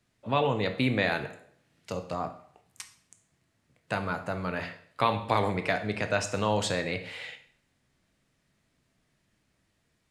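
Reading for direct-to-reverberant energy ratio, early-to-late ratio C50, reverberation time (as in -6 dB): 7.0 dB, 12.0 dB, 0.55 s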